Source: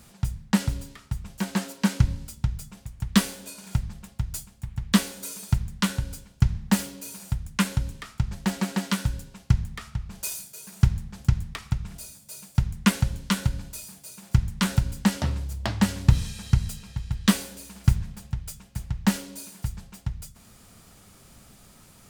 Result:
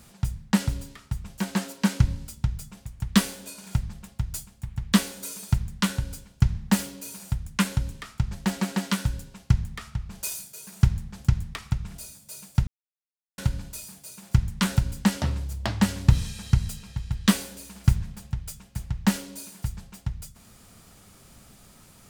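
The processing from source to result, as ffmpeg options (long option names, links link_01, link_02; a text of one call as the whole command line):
ffmpeg -i in.wav -filter_complex "[0:a]asplit=3[link_01][link_02][link_03];[link_01]atrim=end=12.67,asetpts=PTS-STARTPTS,afade=type=out:start_time=12.666:duration=0.004:curve=hsin[link_04];[link_02]atrim=start=12.67:end=13.38,asetpts=PTS-STARTPTS,volume=0[link_05];[link_03]atrim=start=13.38,asetpts=PTS-STARTPTS,afade=type=in:duration=0.004:curve=hsin[link_06];[link_04][link_05][link_06]concat=n=3:v=0:a=1" out.wav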